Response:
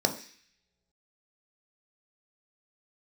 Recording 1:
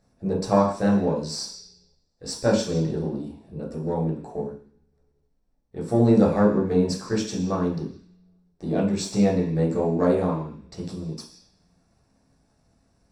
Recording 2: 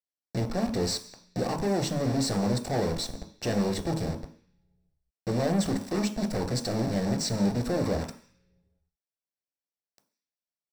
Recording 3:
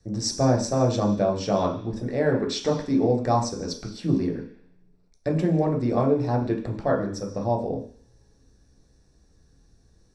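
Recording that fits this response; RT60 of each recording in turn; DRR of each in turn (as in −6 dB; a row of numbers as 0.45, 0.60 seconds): 2; non-exponential decay, non-exponential decay, non-exponential decay; −5.0, 5.0, −0.5 decibels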